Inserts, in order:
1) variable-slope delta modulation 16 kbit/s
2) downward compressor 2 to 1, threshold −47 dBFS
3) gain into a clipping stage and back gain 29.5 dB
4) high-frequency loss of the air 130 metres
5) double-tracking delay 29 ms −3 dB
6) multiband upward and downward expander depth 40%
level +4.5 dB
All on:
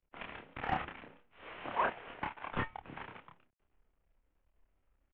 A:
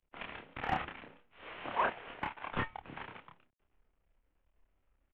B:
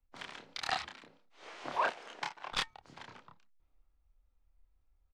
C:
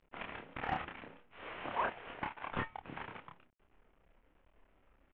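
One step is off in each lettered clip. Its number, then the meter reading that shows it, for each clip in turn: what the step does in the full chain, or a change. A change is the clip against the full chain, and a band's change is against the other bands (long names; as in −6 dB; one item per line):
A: 4, 4 kHz band +2.0 dB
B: 1, 4 kHz band +12.5 dB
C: 6, change in momentary loudness spread −3 LU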